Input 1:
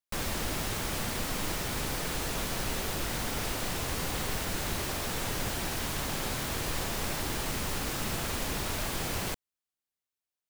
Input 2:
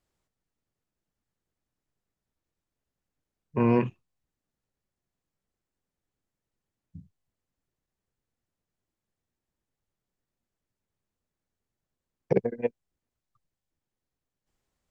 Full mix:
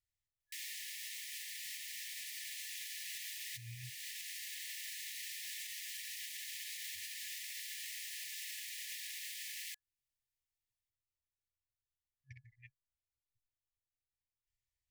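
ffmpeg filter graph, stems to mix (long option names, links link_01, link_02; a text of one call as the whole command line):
ffmpeg -i stem1.wav -i stem2.wav -filter_complex "[0:a]highpass=frequency=1100:width=0.5412,highpass=frequency=1100:width=1.3066,dynaudnorm=framelen=460:gausssize=9:maxgain=10.5dB,adelay=400,volume=-5.5dB[link_01];[1:a]alimiter=limit=-16.5dB:level=0:latency=1:release=495,volume=-11dB,asplit=2[link_02][link_03];[link_03]apad=whole_len=480419[link_04];[link_01][link_04]sidechaincompress=threshold=-50dB:ratio=16:attack=16:release=734[link_05];[link_05][link_02]amix=inputs=2:normalize=0,afftfilt=real='re*(1-between(b*sr/4096,130,1700))':imag='im*(1-between(b*sr/4096,130,1700))':win_size=4096:overlap=0.75,alimiter=level_in=11.5dB:limit=-24dB:level=0:latency=1:release=327,volume=-11.5dB" out.wav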